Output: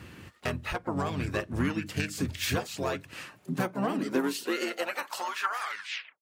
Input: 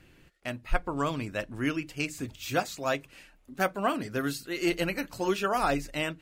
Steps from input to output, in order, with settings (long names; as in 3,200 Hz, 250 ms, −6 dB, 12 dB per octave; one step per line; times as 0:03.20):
turntable brake at the end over 0.62 s
low-shelf EQ 91 Hz −10.5 dB
downward compressor 12 to 1, threshold −38 dBFS, peak gain reduction 17 dB
gain into a clipping stage and back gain 32.5 dB
pitch-shifted copies added −7 semitones −3 dB, +7 semitones −17 dB
high-pass filter sweep 82 Hz → 3,100 Hz, 0:03.06–0:06.21
level +9 dB